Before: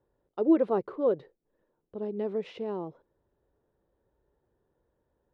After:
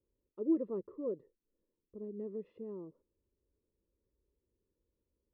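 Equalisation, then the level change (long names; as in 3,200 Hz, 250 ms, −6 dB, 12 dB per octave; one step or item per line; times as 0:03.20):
moving average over 58 samples
parametric band 140 Hz −10 dB 0.53 octaves
−5.0 dB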